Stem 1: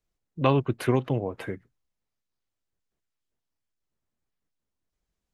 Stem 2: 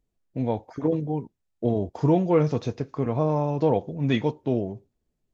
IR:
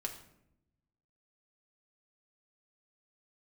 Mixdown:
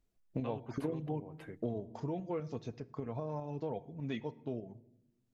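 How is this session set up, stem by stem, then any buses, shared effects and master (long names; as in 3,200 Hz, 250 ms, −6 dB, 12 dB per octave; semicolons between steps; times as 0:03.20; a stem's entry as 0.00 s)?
−3.0 dB, 0.00 s, no send, automatic ducking −12 dB, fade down 0.40 s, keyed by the second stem
0:01.66 −1 dB → 0:02.08 −11.5 dB, 0.00 s, send −9 dB, reverb reduction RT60 0.51 s; shaped tremolo saw up 5 Hz, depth 50%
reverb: on, RT60 0.80 s, pre-delay 5 ms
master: downward compressor 5 to 1, threshold −34 dBFS, peak gain reduction 12 dB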